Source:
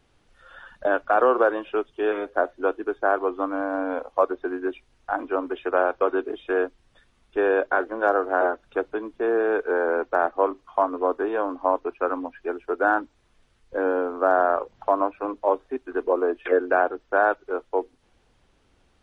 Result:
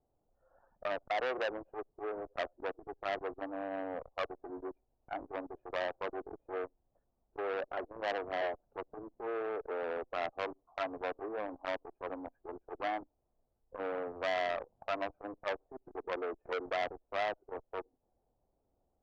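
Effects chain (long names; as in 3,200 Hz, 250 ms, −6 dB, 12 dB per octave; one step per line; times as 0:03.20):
in parallel at −10.5 dB: comparator with hysteresis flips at −32.5 dBFS
on the sum: transistor ladder low-pass 830 Hz, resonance 50%
saturating transformer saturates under 1,900 Hz
level −7.5 dB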